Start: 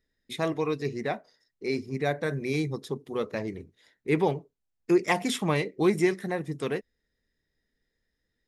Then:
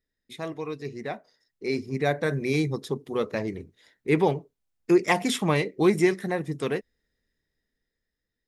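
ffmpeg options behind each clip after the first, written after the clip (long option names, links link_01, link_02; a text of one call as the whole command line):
ffmpeg -i in.wav -af "dynaudnorm=framelen=280:gausssize=11:maxgain=10.5dB,volume=-6dB" out.wav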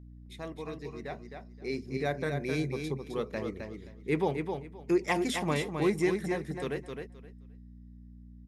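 ffmpeg -i in.wav -filter_complex "[0:a]aeval=exprs='val(0)+0.00891*(sin(2*PI*60*n/s)+sin(2*PI*2*60*n/s)/2+sin(2*PI*3*60*n/s)/3+sin(2*PI*4*60*n/s)/4+sin(2*PI*5*60*n/s)/5)':channel_layout=same,asplit=2[link_01][link_02];[link_02]aecho=0:1:262|524|786:0.501|0.0952|0.0181[link_03];[link_01][link_03]amix=inputs=2:normalize=0,volume=-7dB" out.wav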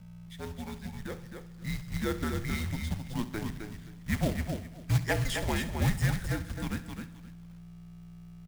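ffmpeg -i in.wav -af "acrusher=bits=3:mode=log:mix=0:aa=0.000001,aecho=1:1:66|132|198|264|330|396:0.168|0.099|0.0584|0.0345|0.0203|0.012,afreqshift=-230" out.wav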